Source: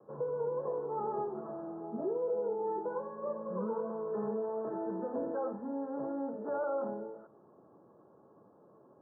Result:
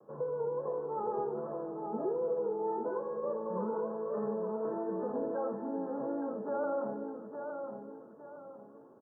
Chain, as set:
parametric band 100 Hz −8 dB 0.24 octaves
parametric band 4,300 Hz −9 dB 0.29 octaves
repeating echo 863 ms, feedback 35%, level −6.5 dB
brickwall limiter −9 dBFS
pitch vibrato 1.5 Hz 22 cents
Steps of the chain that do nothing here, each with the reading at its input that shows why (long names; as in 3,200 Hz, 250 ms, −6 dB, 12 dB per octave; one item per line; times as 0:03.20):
parametric band 4,300 Hz: nothing at its input above 1,400 Hz
brickwall limiter −9 dBFS: peak of its input −23.0 dBFS